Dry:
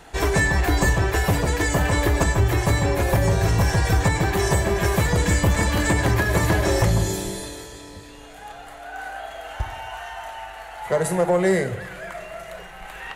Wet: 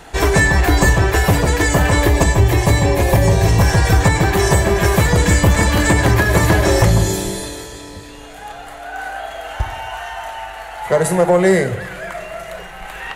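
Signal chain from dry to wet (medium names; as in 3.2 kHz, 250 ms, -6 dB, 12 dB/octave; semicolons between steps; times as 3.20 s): 2.07–3.60 s: peaking EQ 1.4 kHz -11 dB 0.26 oct; trim +6.5 dB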